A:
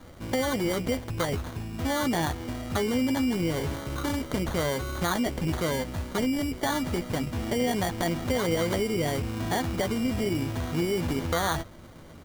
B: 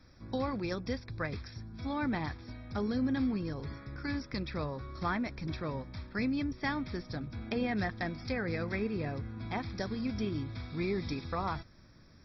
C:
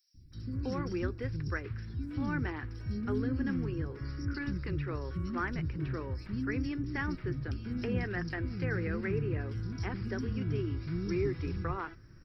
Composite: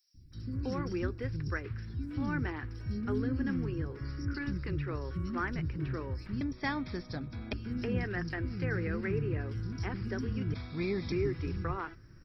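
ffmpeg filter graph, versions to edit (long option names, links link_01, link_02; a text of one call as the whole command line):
ffmpeg -i take0.wav -i take1.wav -i take2.wav -filter_complex "[1:a]asplit=2[link_01][link_02];[2:a]asplit=3[link_03][link_04][link_05];[link_03]atrim=end=6.412[link_06];[link_01]atrim=start=6.408:end=7.532[link_07];[link_04]atrim=start=7.528:end=10.542[link_08];[link_02]atrim=start=10.538:end=11.122[link_09];[link_05]atrim=start=11.118[link_10];[link_06][link_07]acrossfade=duration=0.004:curve1=hsin:curve2=hsin[link_11];[link_11][link_08]acrossfade=duration=0.004:curve1=hsin:curve2=hsin[link_12];[link_12][link_09]acrossfade=duration=0.004:curve1=hsin:curve2=hsin[link_13];[link_13][link_10]acrossfade=duration=0.004:curve1=hsin:curve2=hsin" out.wav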